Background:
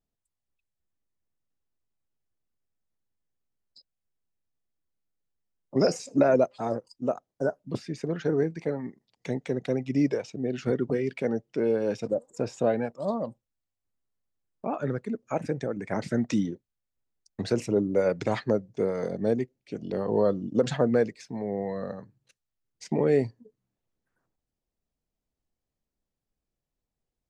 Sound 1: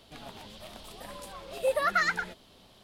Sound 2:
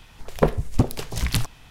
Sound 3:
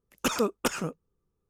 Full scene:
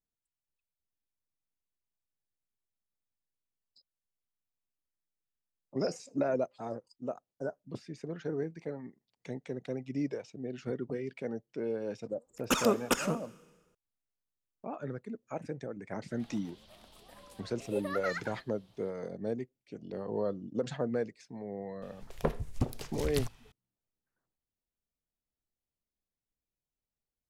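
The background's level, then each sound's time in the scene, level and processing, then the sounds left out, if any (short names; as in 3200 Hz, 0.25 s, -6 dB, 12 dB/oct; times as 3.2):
background -9.5 dB
12.26 add 3 -1 dB + Schroeder reverb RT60 1.4 s, combs from 27 ms, DRR 18 dB
16.08 add 1 -11 dB
21.82 add 2 -12 dB + echo 80 ms -22.5 dB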